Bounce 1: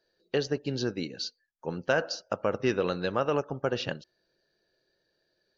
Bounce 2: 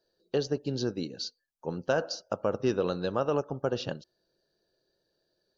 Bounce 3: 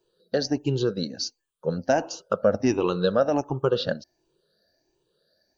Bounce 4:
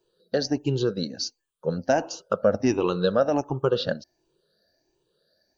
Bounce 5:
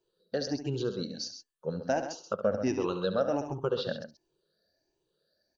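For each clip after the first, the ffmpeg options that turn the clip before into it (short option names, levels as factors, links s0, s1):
-af "equalizer=f=2100:t=o:w=0.79:g=-12.5"
-af "afftfilt=real='re*pow(10,15/40*sin(2*PI*(0.68*log(max(b,1)*sr/1024/100)/log(2)-(1.4)*(pts-256)/sr)))':imag='im*pow(10,15/40*sin(2*PI*(0.68*log(max(b,1)*sr/1024/100)/log(2)-(1.4)*(pts-256)/sr)))':win_size=1024:overlap=0.75,volume=1.5"
-af anull
-af "aecho=1:1:69.97|131.2:0.282|0.316,volume=0.422"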